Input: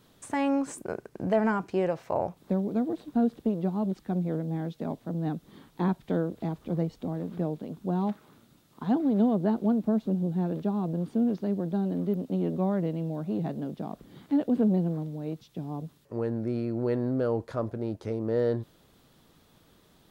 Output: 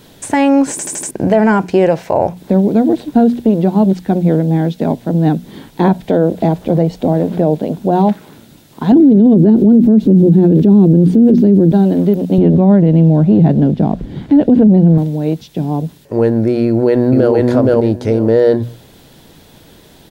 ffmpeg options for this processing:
-filter_complex "[0:a]asettb=1/sr,asplit=3[s0][s1][s2];[s0]atrim=end=5.844[s3];[s1]atrim=start=5.84:end=8.09,asetpts=PTS-STARTPTS,afade=t=in:d=0.004:c=qsin,afade=t=out:st=2.246:d=0.004:c=qsin,equalizer=f=630:w=1.5:g=6.5[s4];[s2]atrim=start=8.086[s5];[s3][s4]acrossfade=d=0.004:c1=hsin:c2=qsin[s6];[s6][s5]acrossfade=d=0.004:c1=qsin:c2=hsin,asettb=1/sr,asplit=3[s7][s8][s9];[s7]atrim=end=8.924[s10];[s8]atrim=start=8.92:end=11.72,asetpts=PTS-STARTPTS,afade=t=in:d=0.004:c=qsin,afade=t=out:st=2.796:d=0.004:c=qsin,lowshelf=f=520:t=q:w=1.5:g=10.5[s11];[s9]atrim=start=11.716[s12];[s10][s11]acrossfade=d=0.004:c1=hsin:c2=qsin[s13];[s13][s12]acrossfade=d=0.004:c1=qsin:c2=hsin,asettb=1/sr,asplit=3[s14][s15][s16];[s14]atrim=end=12.384[s17];[s15]atrim=start=12.38:end=14.98,asetpts=PTS-STARTPTS,afade=t=in:d=0.004:c=qsin,afade=t=out:st=2.596:d=0.004:c=qsin,aemphasis=mode=reproduction:type=bsi[s18];[s16]atrim=start=14.976[s19];[s17][s18]acrossfade=d=0.004:c1=hsin:c2=qsin[s20];[s20][s19]acrossfade=d=0.004:c1=qsin:c2=hsin,asplit=2[s21][s22];[s22]afade=t=in:st=16.65:d=0.01,afade=t=out:st=17.33:d=0.01,aecho=0:1:470|940|1410:0.891251|0.133688|0.0200531[s23];[s21][s23]amix=inputs=2:normalize=0,asplit=6[s24][s25][s26][s27][s28][s29];[s24]atrim=end=0.792[s30];[s25]atrim=start=0.708:end=0.792[s31];[s26]atrim=start=0.708:end=0.792[s32];[s27]atrim=start=0.708:end=0.792[s33];[s28]atrim=start=0.708:end=0.792[s34];[s29]atrim=start=1.108[s35];[s30][s31]acrossfade=d=0.004:c1=hsin:c2=hsin[s36];[s36][s32]acrossfade=d=0.004:c1=hsin:c2=hsin[s37];[s37][s33]acrossfade=d=0.004:c1=hsin:c2=hsin[s38];[s38][s34]acrossfade=d=0.004:c1=hsin:c2=hsin[s39];[s39][s35]acrossfade=d=0.004:c1=hsin:c2=hsin,equalizer=f=1200:t=o:w=0.27:g=-10.5,bandreject=f=60:t=h:w=6,bandreject=f=120:t=h:w=6,bandreject=f=180:t=h:w=6,bandreject=f=240:t=h:w=6,alimiter=level_in=9.44:limit=0.891:release=50:level=0:latency=1,volume=0.891"

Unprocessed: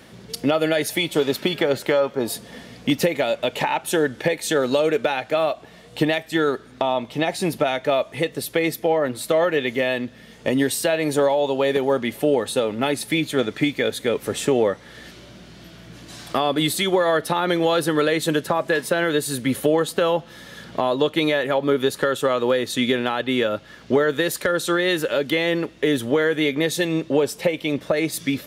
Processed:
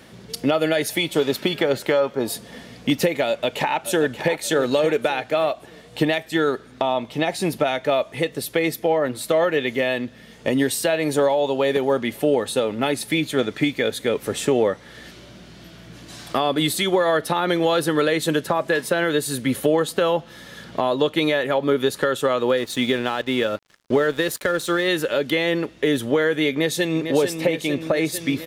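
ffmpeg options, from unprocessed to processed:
-filter_complex "[0:a]asplit=2[s0][s1];[s1]afade=t=in:st=3.27:d=0.01,afade=t=out:st=4.34:d=0.01,aecho=0:1:580|1160|1740|2320:0.266073|0.0931254|0.0325939|0.0114079[s2];[s0][s2]amix=inputs=2:normalize=0,asettb=1/sr,asplit=3[s3][s4][s5];[s3]atrim=end=22.574[s6];[s4]atrim=start=22.57:end=24.88,asetpts=PTS-STARTPTS,afade=t=in:d=0.004:c=qsin,afade=t=out:st=2.306:d=0.004:c=qsin,aeval=exprs='sgn(val(0))*max(abs(val(0))-0.0106,0)':c=same[s7];[s5]atrim=start=24.876[s8];[s6][s7]acrossfade=d=0.004:c1=hsin:c2=qsin[s9];[s9][s8]acrossfade=d=0.004:c1=qsin:c2=hsin,asplit=2[s10][s11];[s11]afade=t=in:st=26.5:d=0.01,afade=t=out:st=27.06:d=0.01,aecho=0:1:450|900|1350|1800|2250|2700|3150|3600|4050|4500|4950|5400:0.421697|0.316272|0.237204|0.177903|0.133427|0.100071|0.0750529|0.0562897|0.0422173|0.0316629|0.0237472|0.0178104[s12];[s10][s12]amix=inputs=2:normalize=0"

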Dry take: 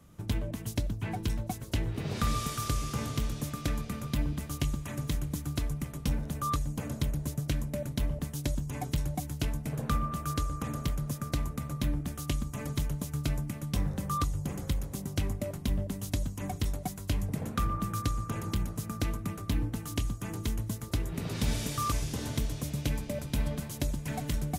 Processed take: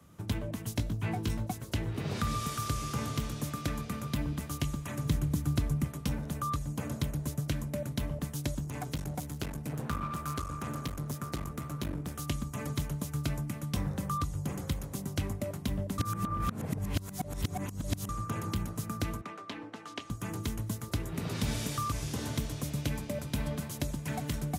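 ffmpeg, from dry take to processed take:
-filter_complex "[0:a]asettb=1/sr,asplit=3[s0][s1][s2];[s0]atrim=end=0.774[s3];[s1]atrim=start=0.77:end=1.46,asetpts=PTS-STARTPTS,afade=t=in:d=0.004:c=qsin,afade=t=out:st=0.686:d=0.004:c=qsin,asplit=2[s4][s5];[s5]adelay=18,volume=0.501[s6];[s4][s6]amix=inputs=2:normalize=0,atrim=end_sample=30429[s7];[s2]atrim=start=1.456[s8];[s3][s7]acrossfade=d=0.004:c1=hsin:c2=qsin[s9];[s9][s8]acrossfade=d=0.004:c1=qsin:c2=hsin,asettb=1/sr,asplit=3[s10][s11][s12];[s10]atrim=end=5.054[s13];[s11]atrim=start=5.05:end=5.88,asetpts=PTS-STARTPTS,afade=t=in:d=0.004:c=qsin,afade=t=out:st=0.826:d=0.004:c=qsin,lowshelf=f=360:g=6.5[s14];[s12]atrim=start=5.876[s15];[s13][s14]acrossfade=d=0.004:c1=hsin:c2=qsin[s16];[s16][s15]acrossfade=d=0.004:c1=qsin:c2=hsin,asettb=1/sr,asplit=3[s17][s18][s19];[s17]atrim=end=8.644[s20];[s18]atrim=start=8.64:end=12.17,asetpts=PTS-STARTPTS,afade=t=in:d=0.004:c=qsin,afade=t=out:st=3.526:d=0.004:c=qsin,aeval=exprs='clip(val(0),-1,0.0126)':c=same[s21];[s19]atrim=start=12.166[s22];[s20][s21]acrossfade=d=0.004:c1=hsin:c2=qsin[s23];[s23][s22]acrossfade=d=0.004:c1=qsin:c2=hsin,asettb=1/sr,asplit=3[s24][s25][s26];[s24]atrim=end=19.214[s27];[s25]atrim=start=19.21:end=20.1,asetpts=PTS-STARTPTS,afade=t=in:d=0.004:c=qsin,afade=t=out:st=0.886:d=0.004:c=qsin,highpass=420,lowpass=4000[s28];[s26]atrim=start=20.096[s29];[s27][s28]acrossfade=d=0.004:c1=hsin:c2=qsin[s30];[s30][s29]acrossfade=d=0.004:c1=qsin:c2=hsin,asplit=3[s31][s32][s33];[s31]atrim=end=15.982[s34];[s32]atrim=start=15.978:end=18.092,asetpts=PTS-STARTPTS,areverse[s35];[s33]atrim=start=18.088[s36];[s34][s35]acrossfade=d=0.004:c1=hsin:c2=hsin[s37];[s37][s36]acrossfade=d=0.004:c1=hsin:c2=hsin,highpass=69,equalizer=f=1200:w=1.5:g=2.5,acrossover=split=240[s38][s39];[s39]acompressor=threshold=0.0224:ratio=4[s40];[s38][s40]amix=inputs=2:normalize=0"

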